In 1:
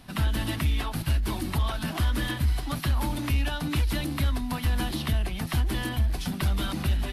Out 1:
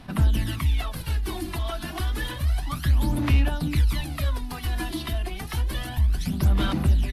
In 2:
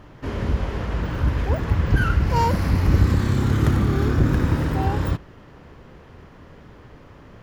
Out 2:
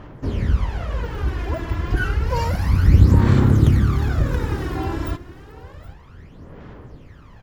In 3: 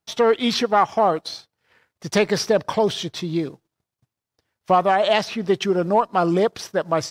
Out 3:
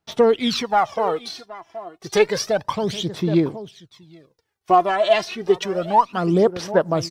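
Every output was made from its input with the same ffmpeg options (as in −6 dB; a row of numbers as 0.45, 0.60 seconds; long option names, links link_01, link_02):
-af "aecho=1:1:773:0.141,aphaser=in_gain=1:out_gain=1:delay=3:decay=0.64:speed=0.3:type=sinusoidal,volume=-3dB"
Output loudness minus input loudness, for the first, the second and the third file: +2.0, +2.0, +0.5 LU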